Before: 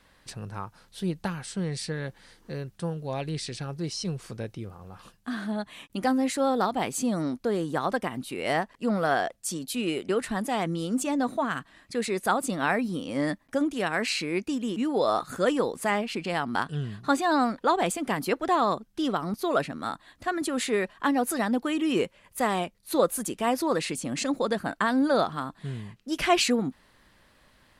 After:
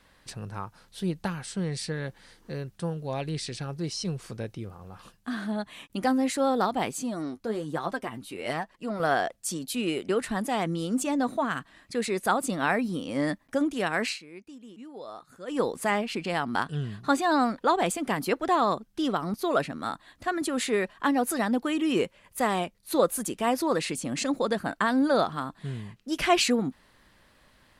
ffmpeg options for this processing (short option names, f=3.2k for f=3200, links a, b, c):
-filter_complex "[0:a]asettb=1/sr,asplit=3[a][b][c];[a]atrim=end=6.914[d];[b]atrim=start=6.91:end=9,asetpts=PTS-STARTPTS,afade=t=in:d=0.004:c=qsin,afade=t=out:st=2.086:d=0.004:c=qsin,flanger=delay=5.2:depth=5.7:regen=32:speed=1.1:shape=triangular[e];[c]atrim=start=8.996[f];[d][e]acrossfade=d=0.004:c1=hsin:c2=qsin[g];[g][f]acrossfade=d=0.004:c1=qsin:c2=hsin,asplit=3[h][i][j];[h]atrim=end=14.19,asetpts=PTS-STARTPTS,afade=t=out:st=14.06:d=0.13:silence=0.141254[k];[i]atrim=start=14.19:end=15.47,asetpts=PTS-STARTPTS,volume=-17dB[l];[j]atrim=start=15.47,asetpts=PTS-STARTPTS,afade=t=in:d=0.13:silence=0.141254[m];[k][l][m]concat=n=3:v=0:a=1"